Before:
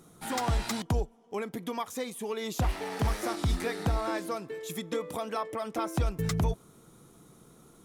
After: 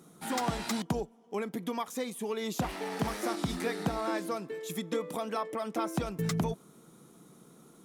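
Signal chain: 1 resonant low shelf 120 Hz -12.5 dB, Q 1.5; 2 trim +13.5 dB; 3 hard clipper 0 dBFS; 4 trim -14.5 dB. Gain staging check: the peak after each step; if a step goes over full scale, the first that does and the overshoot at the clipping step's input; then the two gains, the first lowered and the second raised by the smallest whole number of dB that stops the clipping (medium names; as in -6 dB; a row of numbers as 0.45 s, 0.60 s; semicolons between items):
-17.5 dBFS, -4.0 dBFS, -4.0 dBFS, -18.5 dBFS; nothing clips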